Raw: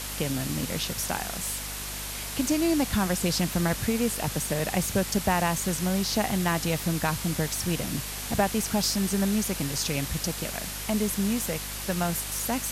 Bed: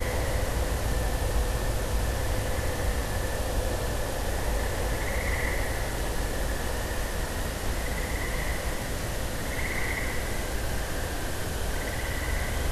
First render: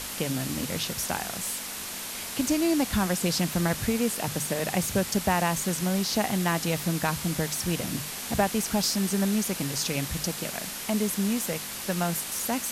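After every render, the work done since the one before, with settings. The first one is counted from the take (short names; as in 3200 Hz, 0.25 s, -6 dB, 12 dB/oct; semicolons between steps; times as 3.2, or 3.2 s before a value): notches 50/100/150 Hz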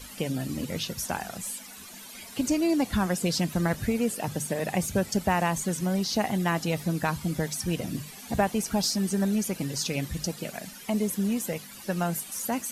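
denoiser 14 dB, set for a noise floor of -36 dBFS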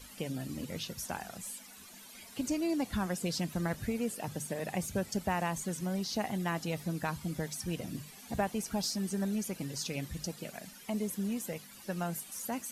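gain -7.5 dB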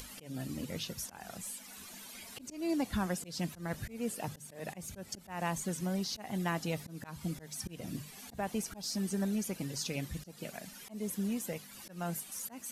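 upward compressor, threshold -43 dBFS; auto swell 0.207 s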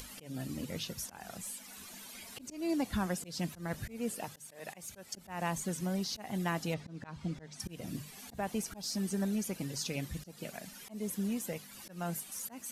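4.24–5.17 low shelf 370 Hz -11.5 dB; 6.74–7.6 air absorption 110 m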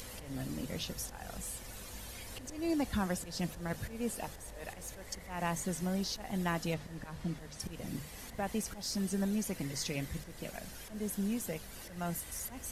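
add bed -22 dB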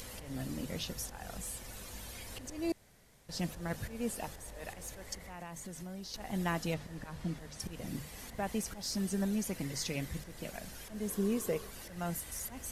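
2.72–3.29 room tone; 5.14–6.14 compressor 4:1, threshold -43 dBFS; 11.08–11.69 small resonant body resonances 420/1100 Hz, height 12 dB -> 14 dB, ringing for 30 ms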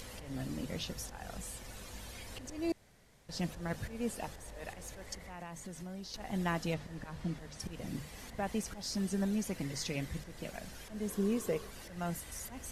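high shelf 11000 Hz -10.5 dB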